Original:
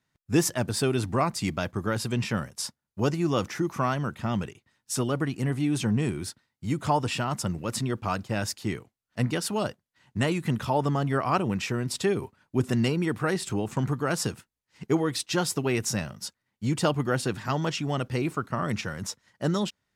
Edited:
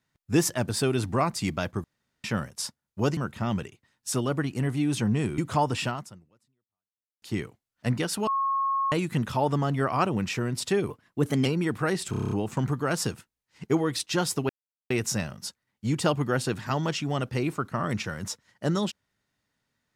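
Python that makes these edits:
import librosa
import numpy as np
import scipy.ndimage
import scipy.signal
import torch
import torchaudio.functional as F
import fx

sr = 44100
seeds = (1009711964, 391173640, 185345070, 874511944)

y = fx.edit(x, sr, fx.room_tone_fill(start_s=1.84, length_s=0.4),
    fx.cut(start_s=3.17, length_s=0.83),
    fx.cut(start_s=6.21, length_s=0.5),
    fx.fade_out_span(start_s=7.22, length_s=1.33, curve='exp'),
    fx.bleep(start_s=9.6, length_s=0.65, hz=1090.0, db=-23.0),
    fx.speed_span(start_s=12.23, length_s=0.63, speed=1.14),
    fx.stutter(start_s=13.51, slice_s=0.03, count=8),
    fx.insert_silence(at_s=15.69, length_s=0.41), tone=tone)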